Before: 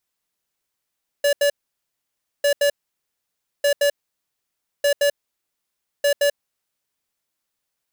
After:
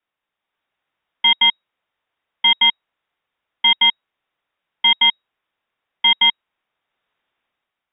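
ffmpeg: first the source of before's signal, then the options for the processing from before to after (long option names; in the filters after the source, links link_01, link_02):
-f lavfi -i "aevalsrc='0.141*(2*lt(mod(573*t,1),0.5)-1)*clip(min(mod(mod(t,1.2),0.17),0.09-mod(mod(t,1.2),0.17))/0.005,0,1)*lt(mod(t,1.2),0.34)':duration=6:sample_rate=44100"
-af "highshelf=frequency=2500:gain=8.5,dynaudnorm=framelen=110:gausssize=11:maxgain=9dB,lowpass=frequency=3200:width_type=q:width=0.5098,lowpass=frequency=3200:width_type=q:width=0.6013,lowpass=frequency=3200:width_type=q:width=0.9,lowpass=frequency=3200:width_type=q:width=2.563,afreqshift=-3800"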